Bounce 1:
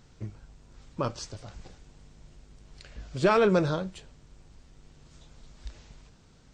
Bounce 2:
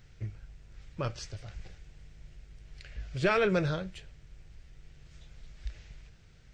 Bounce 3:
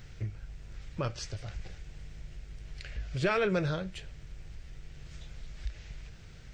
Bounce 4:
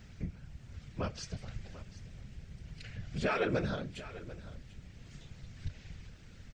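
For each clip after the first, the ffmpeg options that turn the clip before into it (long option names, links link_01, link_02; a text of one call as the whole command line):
ffmpeg -i in.wav -af "equalizer=frequency=250:width_type=o:width=1:gain=-12,equalizer=frequency=500:width_type=o:width=1:gain=-3,equalizer=frequency=1000:width_type=o:width=1:gain=-12,equalizer=frequency=2000:width_type=o:width=1:gain=4,equalizer=frequency=4000:width_type=o:width=1:gain=-4,equalizer=frequency=8000:width_type=o:width=1:gain=-9,volume=3dB" out.wav
ffmpeg -i in.wav -af "acompressor=threshold=-51dB:ratio=1.5,volume=8dB" out.wav
ffmpeg -i in.wav -af "afftfilt=real='hypot(re,im)*cos(2*PI*random(0))':imag='hypot(re,im)*sin(2*PI*random(1))':win_size=512:overlap=0.75,aecho=1:1:742:0.15,volume=2.5dB" out.wav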